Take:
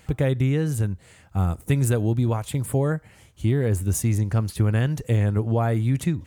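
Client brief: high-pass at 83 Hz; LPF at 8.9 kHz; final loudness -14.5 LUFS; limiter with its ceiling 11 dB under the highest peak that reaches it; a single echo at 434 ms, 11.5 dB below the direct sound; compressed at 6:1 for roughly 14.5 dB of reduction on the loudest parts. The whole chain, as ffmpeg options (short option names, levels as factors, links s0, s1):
-af "highpass=83,lowpass=8900,acompressor=threshold=0.02:ratio=6,alimiter=level_in=2.82:limit=0.0631:level=0:latency=1,volume=0.355,aecho=1:1:434:0.266,volume=23.7"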